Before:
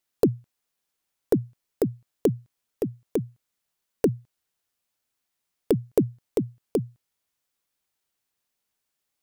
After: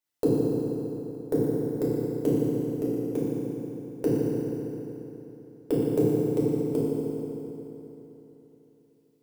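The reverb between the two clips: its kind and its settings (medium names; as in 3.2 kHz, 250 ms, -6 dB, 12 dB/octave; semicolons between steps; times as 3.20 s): FDN reverb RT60 3.5 s, high-frequency decay 0.75×, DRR -8.5 dB; trim -9.5 dB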